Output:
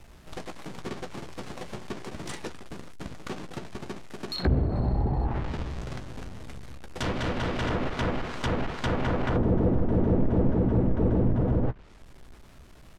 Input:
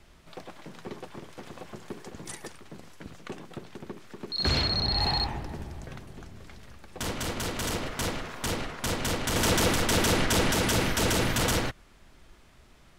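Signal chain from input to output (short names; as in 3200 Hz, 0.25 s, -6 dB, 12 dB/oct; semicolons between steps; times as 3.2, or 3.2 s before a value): half-waves squared off; treble ducked by the level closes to 450 Hz, closed at -19.5 dBFS; doubler 16 ms -10.5 dB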